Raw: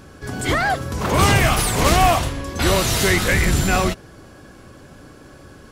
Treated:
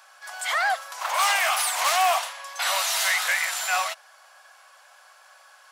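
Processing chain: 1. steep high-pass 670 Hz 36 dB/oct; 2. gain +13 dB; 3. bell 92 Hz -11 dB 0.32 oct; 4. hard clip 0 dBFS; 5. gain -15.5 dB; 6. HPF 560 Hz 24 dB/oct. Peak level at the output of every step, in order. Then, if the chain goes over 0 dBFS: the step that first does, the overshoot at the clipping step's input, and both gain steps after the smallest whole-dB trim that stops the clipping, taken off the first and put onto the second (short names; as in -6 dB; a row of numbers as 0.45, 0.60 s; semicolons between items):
-6.0, +7.0, +7.0, 0.0, -15.5, -10.5 dBFS; step 2, 7.0 dB; step 2 +6 dB, step 5 -8.5 dB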